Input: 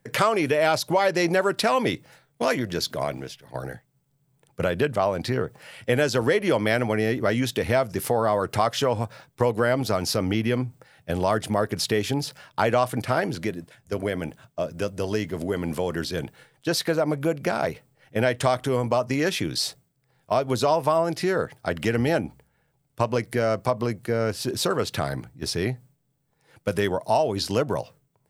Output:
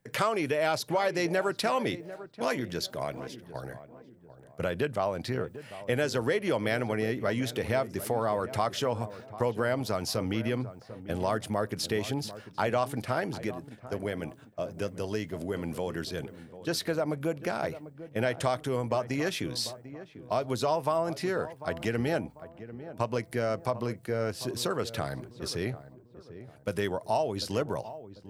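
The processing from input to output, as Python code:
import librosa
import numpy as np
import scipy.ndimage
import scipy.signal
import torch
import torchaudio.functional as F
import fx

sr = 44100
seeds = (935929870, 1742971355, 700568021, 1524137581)

y = fx.echo_filtered(x, sr, ms=745, feedback_pct=42, hz=1000.0, wet_db=-13)
y = y * librosa.db_to_amplitude(-6.5)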